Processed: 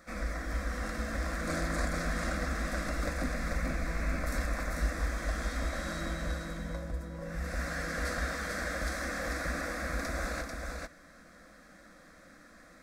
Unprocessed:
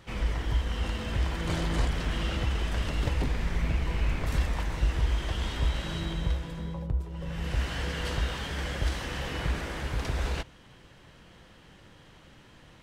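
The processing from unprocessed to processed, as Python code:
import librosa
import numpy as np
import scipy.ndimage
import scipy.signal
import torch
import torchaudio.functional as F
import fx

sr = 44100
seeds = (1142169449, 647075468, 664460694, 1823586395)

p1 = fx.low_shelf(x, sr, hz=200.0, db=-8.5)
p2 = fx.fixed_phaser(p1, sr, hz=600.0, stages=8)
p3 = p2 + fx.echo_single(p2, sr, ms=442, db=-4.0, dry=0)
y = p3 * librosa.db_to_amplitude(3.0)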